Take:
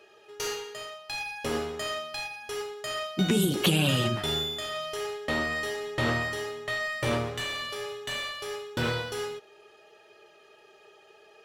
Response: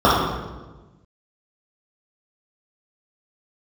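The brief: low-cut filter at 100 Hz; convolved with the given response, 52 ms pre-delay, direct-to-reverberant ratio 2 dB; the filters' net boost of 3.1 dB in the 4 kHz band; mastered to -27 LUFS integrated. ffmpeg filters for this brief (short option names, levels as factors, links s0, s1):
-filter_complex "[0:a]highpass=100,equalizer=f=4000:t=o:g=4,asplit=2[s0][s1];[1:a]atrim=start_sample=2205,adelay=52[s2];[s1][s2]afir=irnorm=-1:irlink=0,volume=0.0316[s3];[s0][s3]amix=inputs=2:normalize=0,volume=1.06"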